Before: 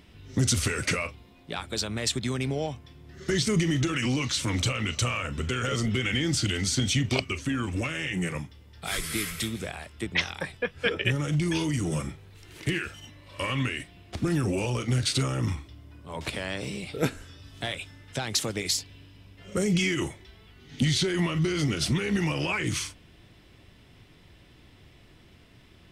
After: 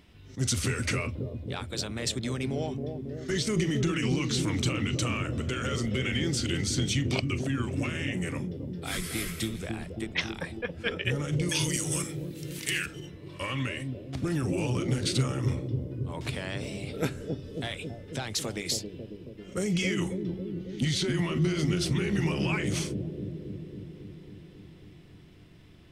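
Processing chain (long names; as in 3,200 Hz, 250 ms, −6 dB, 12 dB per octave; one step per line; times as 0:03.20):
0:11.49–0:12.86: spectral tilt +4.5 dB per octave
on a send: bucket-brigade delay 273 ms, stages 1,024, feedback 73%, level −3.5 dB
on the sum: level that may rise only so fast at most 360 dB per second
level −3.5 dB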